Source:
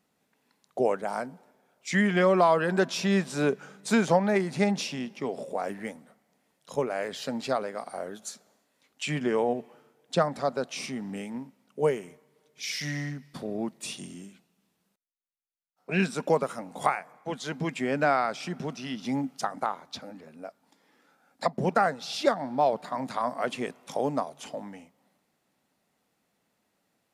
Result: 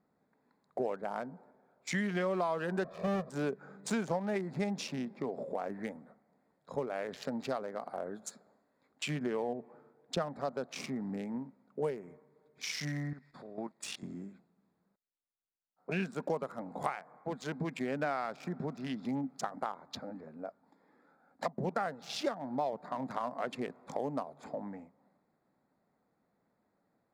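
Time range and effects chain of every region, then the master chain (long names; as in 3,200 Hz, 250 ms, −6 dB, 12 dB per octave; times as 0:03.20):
0:02.84–0:03.30: each half-wave held at its own peak + resonant band-pass 490 Hz, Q 0.69 + comb filter 1.7 ms, depth 95%
0:13.13–0:14.03: low-pass filter 9,400 Hz + tilt shelving filter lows −8 dB, about 700 Hz + output level in coarse steps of 12 dB
whole clip: adaptive Wiener filter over 15 samples; downward compressor 2.5 to 1, threshold −35 dBFS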